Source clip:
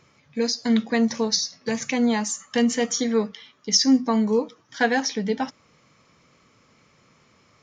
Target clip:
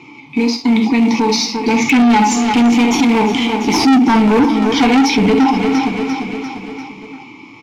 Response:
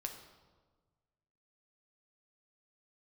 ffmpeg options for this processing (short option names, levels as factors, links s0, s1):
-filter_complex "[0:a]asettb=1/sr,asplit=3[s0][s1][s2];[s0]atrim=end=2.414[s3];[s1]atrim=start=2.41:end=3.87,asetpts=PTS-STARTPTS,afade=t=in:d=0.004:c=qsin,afade=t=out:st=1.456:d=0.004:c=qsin,aeval=exprs='max(val(0),0)':c=same[s4];[s2]atrim=start=3.866[s5];[s3][s4]acrossfade=d=0.004:c1=hsin:c2=qsin[s6];[s6][s5]acrossfade=d=0.004:c1=qsin:c2=hsin,aexciter=amount=3.2:drive=6.4:freq=2500[s7];[1:a]atrim=start_sample=2205,atrim=end_sample=3528,asetrate=41454,aresample=44100[s8];[s7][s8]afir=irnorm=-1:irlink=0,asplit=2[s9][s10];[s10]acompressor=threshold=0.0447:ratio=10,volume=0.794[s11];[s9][s11]amix=inputs=2:normalize=0,aemphasis=mode=reproduction:type=75fm,acrusher=bits=3:mode=log:mix=0:aa=0.000001,asplit=3[s12][s13][s14];[s12]bandpass=f=300:t=q:w=8,volume=1[s15];[s13]bandpass=f=870:t=q:w=8,volume=0.501[s16];[s14]bandpass=f=2240:t=q:w=8,volume=0.355[s17];[s15][s16][s17]amix=inputs=3:normalize=0,dynaudnorm=f=210:g=17:m=5.62,asoftclip=type=tanh:threshold=0.0596,aecho=1:1:346|692|1038|1384|1730:0.158|0.0903|0.0515|0.0294|0.0167,alimiter=level_in=56.2:limit=0.891:release=50:level=0:latency=1,volume=0.501"